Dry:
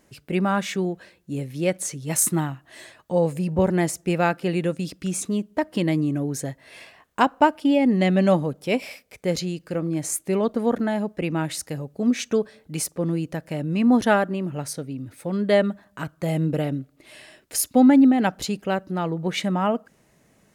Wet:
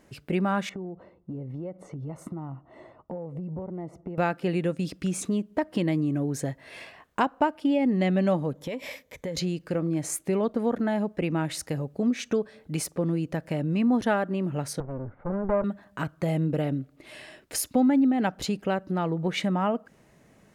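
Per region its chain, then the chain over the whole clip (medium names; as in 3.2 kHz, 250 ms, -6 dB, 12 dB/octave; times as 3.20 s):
0.69–4.18 s: Savitzky-Golay filter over 65 samples + compression 12:1, threshold -34 dBFS
8.55–9.37 s: rippled EQ curve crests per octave 1.1, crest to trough 8 dB + compression 10:1, threshold -31 dBFS
14.80–15.64 s: comb filter that takes the minimum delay 1.4 ms + low-pass 1.5 kHz 24 dB/octave
whole clip: treble shelf 4.3 kHz -7.5 dB; compression 2:1, threshold -29 dBFS; trim +2.5 dB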